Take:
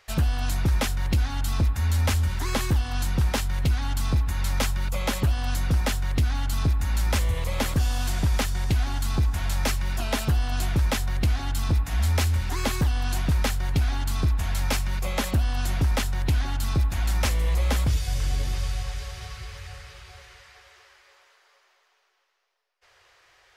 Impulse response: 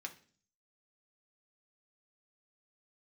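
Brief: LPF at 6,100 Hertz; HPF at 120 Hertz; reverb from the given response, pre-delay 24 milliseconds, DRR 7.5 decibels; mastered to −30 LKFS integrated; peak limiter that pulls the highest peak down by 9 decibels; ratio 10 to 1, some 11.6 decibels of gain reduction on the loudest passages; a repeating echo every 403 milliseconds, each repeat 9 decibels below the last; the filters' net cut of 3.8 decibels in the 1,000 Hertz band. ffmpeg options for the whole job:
-filter_complex "[0:a]highpass=120,lowpass=6100,equalizer=frequency=1000:width_type=o:gain=-5,acompressor=threshold=-34dB:ratio=10,alimiter=level_in=4.5dB:limit=-24dB:level=0:latency=1,volume=-4.5dB,aecho=1:1:403|806|1209|1612:0.355|0.124|0.0435|0.0152,asplit=2[link_01][link_02];[1:a]atrim=start_sample=2205,adelay=24[link_03];[link_02][link_03]afir=irnorm=-1:irlink=0,volume=-5.5dB[link_04];[link_01][link_04]amix=inputs=2:normalize=0,volume=9dB"

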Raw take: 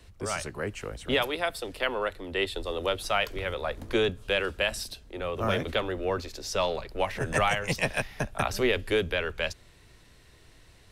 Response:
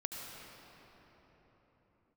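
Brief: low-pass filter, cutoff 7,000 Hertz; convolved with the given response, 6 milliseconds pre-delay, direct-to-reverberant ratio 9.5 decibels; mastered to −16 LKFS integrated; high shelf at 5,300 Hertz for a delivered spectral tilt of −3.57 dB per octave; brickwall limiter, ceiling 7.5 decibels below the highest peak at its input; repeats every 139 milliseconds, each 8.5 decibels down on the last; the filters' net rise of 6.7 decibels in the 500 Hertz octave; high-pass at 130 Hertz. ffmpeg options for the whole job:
-filter_complex "[0:a]highpass=130,lowpass=7000,equalizer=frequency=500:width_type=o:gain=8,highshelf=frequency=5300:gain=8.5,alimiter=limit=-16.5dB:level=0:latency=1,aecho=1:1:139|278|417|556:0.376|0.143|0.0543|0.0206,asplit=2[link_01][link_02];[1:a]atrim=start_sample=2205,adelay=6[link_03];[link_02][link_03]afir=irnorm=-1:irlink=0,volume=-10dB[link_04];[link_01][link_04]amix=inputs=2:normalize=0,volume=11dB"

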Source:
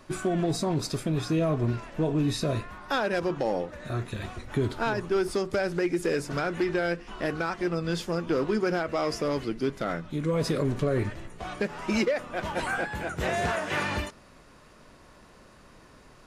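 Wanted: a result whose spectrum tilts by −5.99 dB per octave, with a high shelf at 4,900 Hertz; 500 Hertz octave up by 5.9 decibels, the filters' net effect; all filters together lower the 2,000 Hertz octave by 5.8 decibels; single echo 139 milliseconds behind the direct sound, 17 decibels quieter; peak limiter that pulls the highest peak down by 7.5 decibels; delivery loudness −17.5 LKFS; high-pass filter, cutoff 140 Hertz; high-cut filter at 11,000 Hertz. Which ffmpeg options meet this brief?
ffmpeg -i in.wav -af "highpass=140,lowpass=11000,equalizer=frequency=500:width_type=o:gain=8,equalizer=frequency=2000:width_type=o:gain=-8,highshelf=frequency=4900:gain=-5.5,alimiter=limit=-18dB:level=0:latency=1,aecho=1:1:139:0.141,volume=10.5dB" out.wav

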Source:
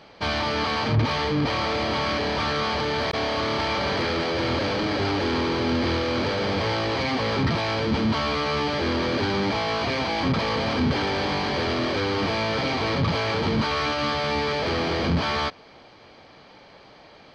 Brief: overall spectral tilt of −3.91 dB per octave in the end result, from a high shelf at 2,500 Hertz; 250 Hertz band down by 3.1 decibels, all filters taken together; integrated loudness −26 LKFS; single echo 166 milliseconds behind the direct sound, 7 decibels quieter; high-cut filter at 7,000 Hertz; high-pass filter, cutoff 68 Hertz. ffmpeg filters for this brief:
ffmpeg -i in.wav -af "highpass=68,lowpass=7000,equalizer=frequency=250:width_type=o:gain=-4,highshelf=frequency=2500:gain=9,aecho=1:1:166:0.447,volume=-4.5dB" out.wav

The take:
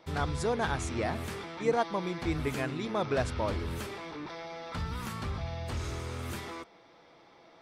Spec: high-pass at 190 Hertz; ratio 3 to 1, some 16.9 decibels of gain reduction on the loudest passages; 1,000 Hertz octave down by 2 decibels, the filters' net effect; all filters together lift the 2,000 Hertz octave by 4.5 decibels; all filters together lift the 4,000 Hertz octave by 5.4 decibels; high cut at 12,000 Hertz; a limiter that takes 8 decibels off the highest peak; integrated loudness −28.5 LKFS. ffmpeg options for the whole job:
ffmpeg -i in.wav -af "highpass=190,lowpass=12000,equalizer=frequency=1000:width_type=o:gain=-4.5,equalizer=frequency=2000:width_type=o:gain=6,equalizer=frequency=4000:width_type=o:gain=5,acompressor=threshold=-46dB:ratio=3,volume=19dB,alimiter=limit=-19dB:level=0:latency=1" out.wav

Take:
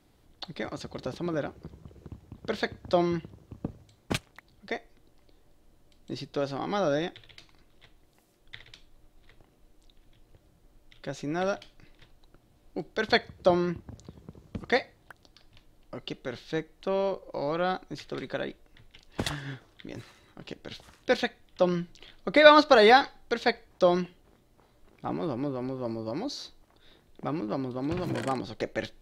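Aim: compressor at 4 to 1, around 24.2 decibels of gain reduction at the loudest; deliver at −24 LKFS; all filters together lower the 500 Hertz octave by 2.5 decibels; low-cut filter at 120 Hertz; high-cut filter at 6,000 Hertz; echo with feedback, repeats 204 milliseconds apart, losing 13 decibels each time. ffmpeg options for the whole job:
ffmpeg -i in.wav -af "highpass=120,lowpass=6000,equalizer=frequency=500:width_type=o:gain=-3,acompressor=threshold=-42dB:ratio=4,aecho=1:1:204|408|612:0.224|0.0493|0.0108,volume=22dB" out.wav

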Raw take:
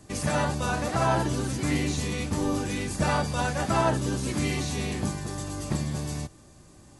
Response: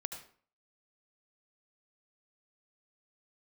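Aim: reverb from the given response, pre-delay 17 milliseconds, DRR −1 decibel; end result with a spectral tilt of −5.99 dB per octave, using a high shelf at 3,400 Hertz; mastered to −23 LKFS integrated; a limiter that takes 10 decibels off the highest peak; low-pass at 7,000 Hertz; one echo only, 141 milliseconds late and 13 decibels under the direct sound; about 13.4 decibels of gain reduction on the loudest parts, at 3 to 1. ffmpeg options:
-filter_complex "[0:a]lowpass=7000,highshelf=frequency=3400:gain=-8.5,acompressor=threshold=-39dB:ratio=3,alimiter=level_in=11dB:limit=-24dB:level=0:latency=1,volume=-11dB,aecho=1:1:141:0.224,asplit=2[link_01][link_02];[1:a]atrim=start_sample=2205,adelay=17[link_03];[link_02][link_03]afir=irnorm=-1:irlink=0,volume=1.5dB[link_04];[link_01][link_04]amix=inputs=2:normalize=0,volume=17.5dB"

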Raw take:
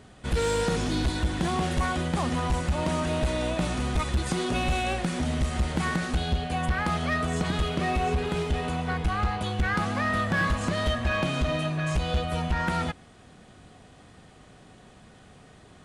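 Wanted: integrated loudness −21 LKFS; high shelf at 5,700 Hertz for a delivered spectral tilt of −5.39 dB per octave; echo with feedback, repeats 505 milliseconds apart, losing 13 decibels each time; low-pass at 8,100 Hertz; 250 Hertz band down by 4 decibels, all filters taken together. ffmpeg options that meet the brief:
ffmpeg -i in.wav -af "lowpass=8100,equalizer=frequency=250:width_type=o:gain=-6,highshelf=frequency=5700:gain=-3,aecho=1:1:505|1010|1515:0.224|0.0493|0.0108,volume=7.5dB" out.wav

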